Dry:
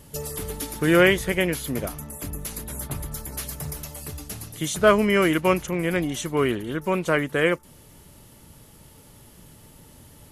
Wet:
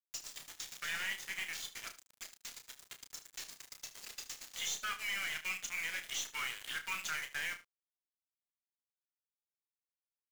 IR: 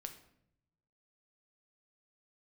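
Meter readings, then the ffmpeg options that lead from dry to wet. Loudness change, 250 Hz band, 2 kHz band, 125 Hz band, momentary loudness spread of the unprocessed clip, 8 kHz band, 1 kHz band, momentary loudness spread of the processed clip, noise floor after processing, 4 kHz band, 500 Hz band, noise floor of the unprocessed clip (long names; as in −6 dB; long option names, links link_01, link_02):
−16.0 dB, −39.5 dB, −12.0 dB, −36.0 dB, 15 LU, −9.0 dB, −19.0 dB, 12 LU, below −85 dBFS, −8.0 dB, −38.5 dB, −50 dBFS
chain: -filter_complex "[0:a]highpass=frequency=1500:width=0.5412,highpass=frequency=1500:width=1.3066,highshelf=frequency=2400:gain=7.5,acompressor=threshold=-33dB:ratio=8,aresample=16000,asoftclip=type=tanh:threshold=-31.5dB,aresample=44100,aeval=exprs='0.0398*(cos(1*acos(clip(val(0)/0.0398,-1,1)))-cos(1*PI/2))+0.00398*(cos(2*acos(clip(val(0)/0.0398,-1,1)))-cos(2*PI/2))':channel_layout=same,flanger=delay=2.2:depth=2.8:regen=41:speed=0.63:shape=sinusoidal,aeval=exprs='val(0)*gte(abs(val(0)),0.00531)':channel_layout=same,asplit=2[link_01][link_02];[link_02]adelay=31,volume=-8dB[link_03];[link_01][link_03]amix=inputs=2:normalize=0,aecho=1:1:75:0.168,volume=4.5dB"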